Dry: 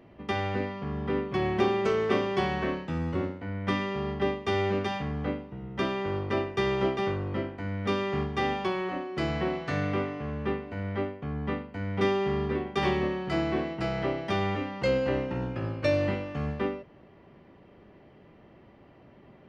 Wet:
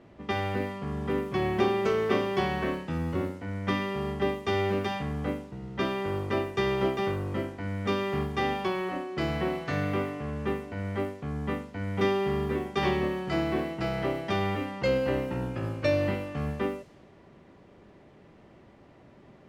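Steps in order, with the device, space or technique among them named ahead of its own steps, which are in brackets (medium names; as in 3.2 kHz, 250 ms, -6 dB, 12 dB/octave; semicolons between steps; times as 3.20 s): cassette deck with a dynamic noise filter (white noise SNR 31 dB; level-controlled noise filter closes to 2.3 kHz, open at -26 dBFS)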